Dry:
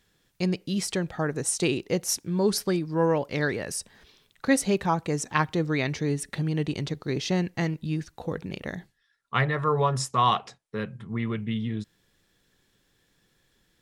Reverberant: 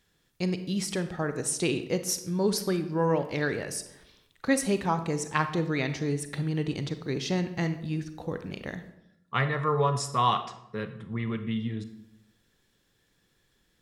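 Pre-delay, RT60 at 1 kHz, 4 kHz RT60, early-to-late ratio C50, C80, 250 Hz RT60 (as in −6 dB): 32 ms, 0.75 s, 0.55 s, 11.0 dB, 14.0 dB, 0.95 s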